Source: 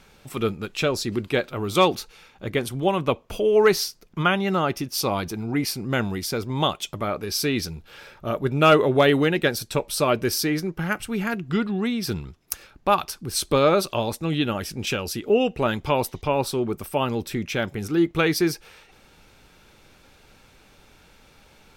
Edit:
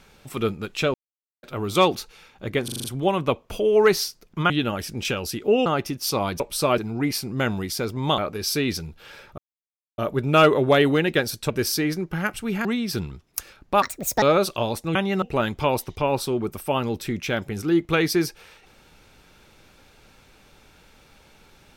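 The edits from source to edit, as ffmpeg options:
-filter_complex "[0:a]asplit=20[s0][s1][s2][s3][s4][s5][s6][s7][s8][s9][s10][s11][s12][s13][s14][s15][s16][s17][s18][s19];[s0]atrim=end=0.94,asetpts=PTS-STARTPTS,afade=t=out:st=0.936:d=0.004:c=hsin[s20];[s1]atrim=start=0.94:end=1.43,asetpts=PTS-STARTPTS,volume=0[s21];[s2]atrim=start=1.43:end=2.682,asetpts=PTS-STARTPTS,afade=t=in:d=0.004:c=hsin[s22];[s3]atrim=start=2.638:end=2.682[s23];[s4]atrim=start=2.638:end=2.682[s24];[s5]atrim=start=2.638:end=2.682[s25];[s6]atrim=start=2.638:end=2.682[s26];[s7]atrim=start=2.638:end=4.302[s27];[s8]atrim=start=14.318:end=15.482[s28];[s9]atrim=start=4.568:end=5.312[s29];[s10]atrim=start=9.778:end=10.162[s30];[s11]atrim=start=5.308:end=6.712[s31];[s12]atrim=start=7.058:end=8.26,asetpts=PTS-STARTPTS,afade=t=out:st=1.198:d=0.004:c=hsin,apad=pad_dur=0.6[s32];[s13]atrim=start=8.26:end=9.782,asetpts=PTS-STARTPTS,afade=t=in:d=0.004:c=hsin[s33];[s14]atrim=start=10.158:end=11.312[s34];[s15]atrim=start=11.788:end=12.964[s35];[s16]atrim=start=12.96:end=13.59,asetpts=PTS-STARTPTS,asetrate=69237,aresample=44100,atrim=end_sample=17696,asetpts=PTS-STARTPTS[s36];[s17]atrim=start=13.586:end=14.322[s37];[s18]atrim=start=4.298:end=4.572[s38];[s19]atrim=start=15.478[s39];[s20][s21][s22]concat=n=3:v=0:a=1[s40];[s40][s23]acrossfade=d=0.004:c1=hsin:c2=hsin[s41];[s41][s24]acrossfade=d=0.004:c1=hsin:c2=hsin[s42];[s42][s25]acrossfade=d=0.004:c1=hsin:c2=hsin[s43];[s43][s26]acrossfade=d=0.004:c1=hsin:c2=hsin[s44];[s44][s27]acrossfade=d=0.004:c1=hsin:c2=hsin[s45];[s45][s28]acrossfade=d=0.004:c1=hsin:c2=hsin[s46];[s46][s29]acrossfade=d=0.004:c1=hsin:c2=hsin[s47];[s47][s30]acrossfade=d=0.004:c1=hsin:c2=hsin[s48];[s48][s31]acrossfade=d=0.004:c1=hsin:c2=hsin[s49];[s32][s33]concat=n=2:v=0:a=1[s50];[s49][s50]acrossfade=d=0.004:c1=hsin:c2=hsin[s51];[s51][s34]acrossfade=d=0.004:c1=hsin:c2=hsin[s52];[s52][s35]acrossfade=d=0.004:c1=hsin:c2=hsin[s53];[s53][s36]acrossfade=d=0.004:c1=hsin:c2=hsin[s54];[s54][s37]acrossfade=d=0.004:c1=hsin:c2=hsin[s55];[s55][s38]acrossfade=d=0.004:c1=hsin:c2=hsin[s56];[s56][s39]acrossfade=d=0.004:c1=hsin:c2=hsin"

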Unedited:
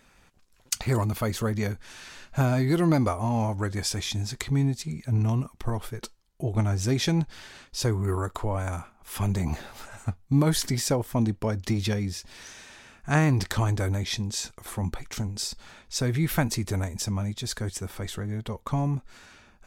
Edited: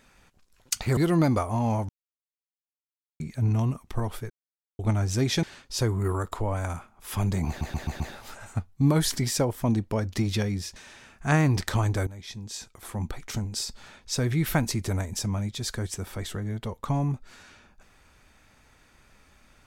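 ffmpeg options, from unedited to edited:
-filter_complex "[0:a]asplit=13[s0][s1][s2][s3][s4][s5][s6][s7][s8][s9][s10][s11][s12];[s0]atrim=end=0.972[s13];[s1]atrim=start=2.668:end=3.59,asetpts=PTS-STARTPTS,afade=t=out:st=0.918:d=0.004:c=hsin[s14];[s2]atrim=start=3.59:end=4.9,asetpts=PTS-STARTPTS,volume=0[s15];[s3]atrim=start=4.9:end=6,asetpts=PTS-STARTPTS,afade=t=in:d=0.004:c=hsin,afade=t=out:st=1.096:d=0.004:c=hsin[s16];[s4]atrim=start=6:end=6.49,asetpts=PTS-STARTPTS,volume=0[s17];[s5]atrim=start=6.49:end=7.132,asetpts=PTS-STARTPTS,afade=t=in:d=0.004:c=hsin[s18];[s6]atrim=start=7.458:end=9.642[s19];[s7]atrim=start=9.508:end=9.642[s20];[s8]atrim=start=9.508:end=9.642[s21];[s9]atrim=start=9.508:end=9.642[s22];[s10]atrim=start=9.508:end=12.272[s23];[s11]atrim=start=12.588:end=13.9,asetpts=PTS-STARTPTS,afade=t=out:st=1.308:d=0.004:c=hsin:silence=0.149624[s24];[s12]atrim=start=13.9,asetpts=PTS-STARTPTS,afade=t=in:d=1.25:silence=0.149624[s25];[s14][s15][s16][s17][s18]concat=n=5:v=0:a=1[s26];[s13][s26]acrossfade=d=0.004:c1=hsin:c2=hsin[s27];[s27][s19]acrossfade=d=0.004:c1=hsin:c2=hsin[s28];[s28][s20]acrossfade=d=0.004:c1=hsin:c2=hsin[s29];[s29][s21]acrossfade=d=0.004:c1=hsin:c2=hsin[s30];[s30][s22]acrossfade=d=0.004:c1=hsin:c2=hsin[s31];[s31][s23]acrossfade=d=0.004:c1=hsin:c2=hsin[s32];[s24][s25]concat=n=2:v=0:a=1[s33];[s32][s33]acrossfade=d=0.004:c1=hsin:c2=hsin"

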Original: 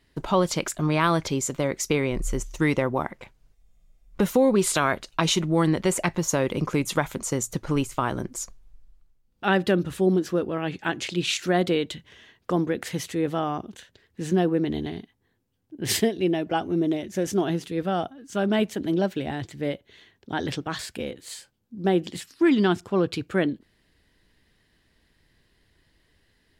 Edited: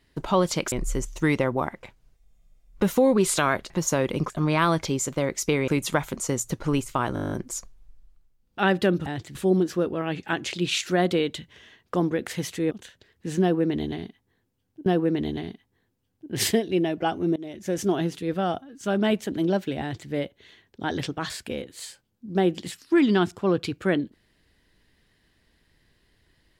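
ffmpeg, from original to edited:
-filter_complex "[0:a]asplit=19[s0][s1][s2][s3][s4][s5][s6][s7][s8][s9][s10][s11][s12][s13][s14][s15][s16][s17][s18];[s0]atrim=end=0.722[s19];[s1]atrim=start=2.098:end=5.082[s20];[s2]atrim=start=6.108:end=6.712[s21];[s3]atrim=start=0.718:end=2.102[s22];[s4]atrim=start=6.708:end=8.192[s23];[s5]atrim=start=8.168:end=8.192[s24];[s6]atrim=start=8.168:end=8.192[s25];[s7]atrim=start=8.168:end=8.192[s26];[s8]atrim=start=8.168:end=8.192[s27];[s9]atrim=start=8.168:end=8.192[s28];[s10]atrim=start=8.168:end=8.192[s29];[s11]atrim=start=8.168:end=8.192[s30];[s12]atrim=start=8.168:end=8.192[s31];[s13]atrim=start=8.168:end=9.912[s32];[s14]atrim=start=19.298:end=19.592[s33];[s15]atrim=start=9.908:end=13.272[s34];[s16]atrim=start=13.648:end=15.802[s35];[s17]atrim=start=14.348:end=16.85,asetpts=PTS-STARTPTS,afade=t=out:st=2.498:d=0.004:c=hsin:silence=0.0630957[s36];[s18]atrim=start=16.85,asetpts=PTS-STARTPTS,afade=t=in:d=0.52:c=qsin:silence=0.0630957[s37];[s19][s20]acrossfade=d=0.004:c1=hsin:c2=hsin[s38];[s38][s21]acrossfade=d=0.004:c1=hsin:c2=hsin[s39];[s39][s22]acrossfade=d=0.004:c1=hsin:c2=hsin[s40];[s40][s23]acrossfade=d=0.004:c1=hsin:c2=hsin[s41];[s41][s24]acrossfade=d=0.004:c1=hsin:c2=hsin[s42];[s42][s25]acrossfade=d=0.004:c1=hsin:c2=hsin[s43];[s43][s26]acrossfade=d=0.004:c1=hsin:c2=hsin[s44];[s44][s27]acrossfade=d=0.004:c1=hsin:c2=hsin[s45];[s45][s28]acrossfade=d=0.004:c1=hsin:c2=hsin[s46];[s46][s29]acrossfade=d=0.004:c1=hsin:c2=hsin[s47];[s47][s30]acrossfade=d=0.004:c1=hsin:c2=hsin[s48];[s48][s31]acrossfade=d=0.004:c1=hsin:c2=hsin[s49];[s49][s32]acrossfade=d=0.004:c1=hsin:c2=hsin[s50];[s50][s33]acrossfade=d=0.004:c1=hsin:c2=hsin[s51];[s51][s34]acrossfade=d=0.004:c1=hsin:c2=hsin[s52];[s52][s35]acrossfade=d=0.004:c1=hsin:c2=hsin[s53];[s36][s37]concat=n=2:v=0:a=1[s54];[s53][s54]acrossfade=d=0.004:c1=hsin:c2=hsin"

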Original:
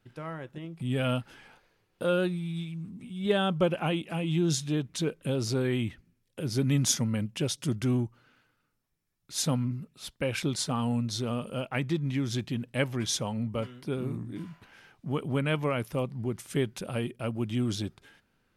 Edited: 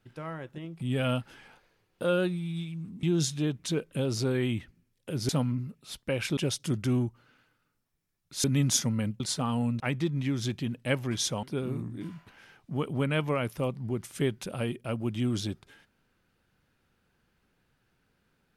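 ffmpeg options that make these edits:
-filter_complex "[0:a]asplit=8[s0][s1][s2][s3][s4][s5][s6][s7];[s0]atrim=end=3.032[s8];[s1]atrim=start=4.328:end=6.592[s9];[s2]atrim=start=9.418:end=10.502[s10];[s3]atrim=start=7.348:end=9.422[s11];[s4]atrim=start=6.588:end=7.352[s12];[s5]atrim=start=10.498:end=11.102[s13];[s6]atrim=start=11.688:end=13.322[s14];[s7]atrim=start=13.778[s15];[s8][s9]acrossfade=d=0.004:c1=hsin:c2=hsin[s16];[s16][s10]acrossfade=d=0.004:c1=hsin:c2=hsin[s17];[s17][s11]acrossfade=d=0.004:c1=hsin:c2=hsin[s18];[s18][s12]acrossfade=d=0.004:c1=hsin:c2=hsin[s19];[s19][s13]acrossfade=d=0.004:c1=hsin:c2=hsin[s20];[s20][s14]acrossfade=d=0.004:c1=hsin:c2=hsin[s21];[s21][s15]acrossfade=d=0.004:c1=hsin:c2=hsin"

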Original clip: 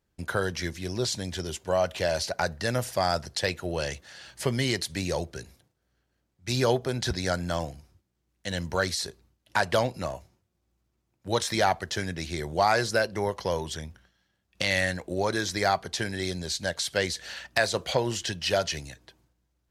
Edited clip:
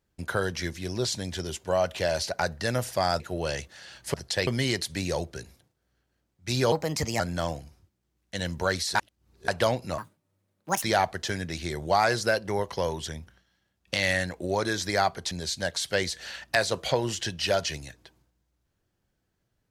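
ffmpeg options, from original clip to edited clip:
-filter_complex "[0:a]asplit=11[s0][s1][s2][s3][s4][s5][s6][s7][s8][s9][s10];[s0]atrim=end=3.202[s11];[s1]atrim=start=3.528:end=4.472[s12];[s2]atrim=start=3.198:end=3.532[s13];[s3]atrim=start=4.468:end=6.724[s14];[s4]atrim=start=6.72:end=7.32,asetpts=PTS-STARTPTS,asetrate=55125,aresample=44100[s15];[s5]atrim=start=7.316:end=9.072[s16];[s6]atrim=start=9.068:end=9.602,asetpts=PTS-STARTPTS,areverse[s17];[s7]atrim=start=9.598:end=10.104[s18];[s8]atrim=start=10.1:end=11.5,asetpts=PTS-STARTPTS,asetrate=73206,aresample=44100[s19];[s9]atrim=start=11.496:end=15.992[s20];[s10]atrim=start=16.338[s21];[s11][s12]acrossfade=d=0.004:c1=hsin:c2=hsin[s22];[s22][s13]acrossfade=d=0.004:c1=hsin:c2=hsin[s23];[s23][s14]acrossfade=d=0.004:c1=hsin:c2=hsin[s24];[s24][s15]acrossfade=d=0.004:c1=hsin:c2=hsin[s25];[s25][s16]acrossfade=d=0.004:c1=hsin:c2=hsin[s26];[s26][s17]acrossfade=d=0.004:c1=hsin:c2=hsin[s27];[s27][s18]acrossfade=d=0.004:c1=hsin:c2=hsin[s28];[s28][s19]acrossfade=d=0.004:c1=hsin:c2=hsin[s29];[s29][s20]acrossfade=d=0.004:c1=hsin:c2=hsin[s30];[s30][s21]acrossfade=d=0.004:c1=hsin:c2=hsin"

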